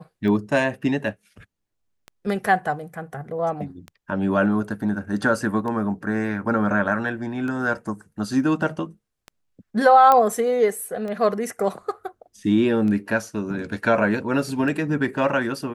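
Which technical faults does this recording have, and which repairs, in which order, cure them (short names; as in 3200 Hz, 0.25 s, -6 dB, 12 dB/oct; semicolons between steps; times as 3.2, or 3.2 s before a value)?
tick 33 1/3 rpm -21 dBFS
10.12 pop -6 dBFS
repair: de-click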